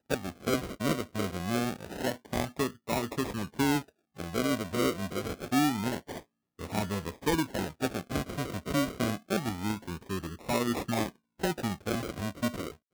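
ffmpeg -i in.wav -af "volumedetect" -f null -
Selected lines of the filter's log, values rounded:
mean_volume: -32.2 dB
max_volume: -13.4 dB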